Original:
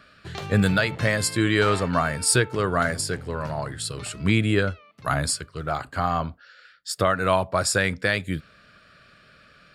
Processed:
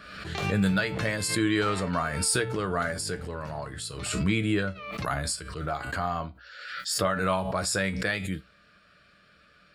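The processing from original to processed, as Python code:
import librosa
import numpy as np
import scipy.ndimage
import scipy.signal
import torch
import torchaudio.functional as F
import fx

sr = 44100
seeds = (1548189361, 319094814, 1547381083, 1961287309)

y = fx.hum_notches(x, sr, base_hz=60, count=2)
y = fx.comb_fb(y, sr, f0_hz=64.0, decay_s=0.19, harmonics='odd', damping=0.0, mix_pct=70)
y = fx.pre_swell(y, sr, db_per_s=45.0)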